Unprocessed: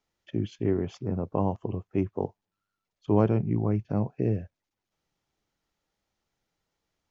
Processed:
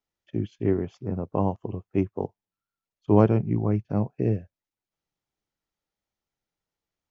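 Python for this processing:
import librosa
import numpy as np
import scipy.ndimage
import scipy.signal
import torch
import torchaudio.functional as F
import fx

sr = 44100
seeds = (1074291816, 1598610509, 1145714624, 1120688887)

y = fx.upward_expand(x, sr, threshold_db=-45.0, expansion=1.5)
y = y * 10.0 ** (5.0 / 20.0)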